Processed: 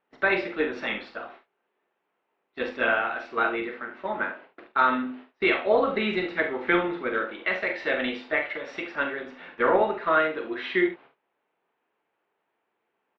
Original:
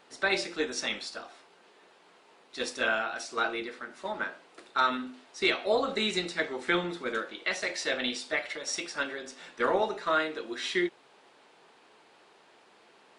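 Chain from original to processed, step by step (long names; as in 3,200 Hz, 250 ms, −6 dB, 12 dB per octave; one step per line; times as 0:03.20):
low-pass filter 2,700 Hz 24 dB per octave
noise gate −52 dBFS, range −23 dB
on a send: ambience of single reflections 43 ms −8 dB, 70 ms −12 dB
on the sum: level +4.5 dB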